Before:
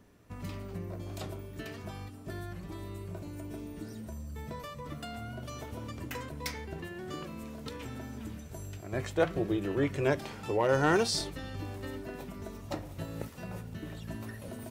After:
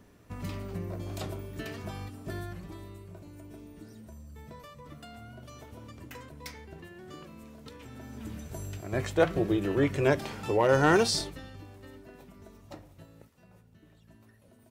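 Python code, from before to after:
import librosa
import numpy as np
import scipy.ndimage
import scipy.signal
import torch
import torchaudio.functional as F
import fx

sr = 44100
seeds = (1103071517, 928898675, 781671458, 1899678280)

y = fx.gain(x, sr, db=fx.line((2.37, 3.0), (3.05, -6.0), (7.86, -6.0), (8.42, 3.5), (11.09, 3.5), (11.66, -9.0), (12.81, -9.0), (13.3, -17.0)))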